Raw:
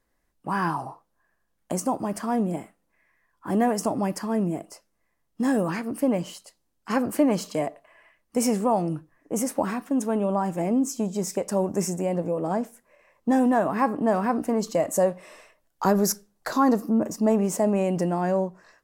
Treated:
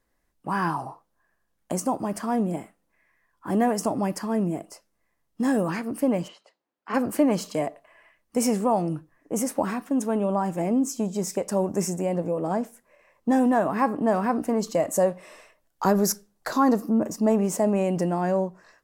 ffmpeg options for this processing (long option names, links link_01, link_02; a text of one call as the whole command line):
ffmpeg -i in.wav -filter_complex "[0:a]asplit=3[link_01][link_02][link_03];[link_01]afade=type=out:start_time=6.27:duration=0.02[link_04];[link_02]highpass=350,lowpass=2500,afade=type=in:start_time=6.27:duration=0.02,afade=type=out:start_time=6.93:duration=0.02[link_05];[link_03]afade=type=in:start_time=6.93:duration=0.02[link_06];[link_04][link_05][link_06]amix=inputs=3:normalize=0" out.wav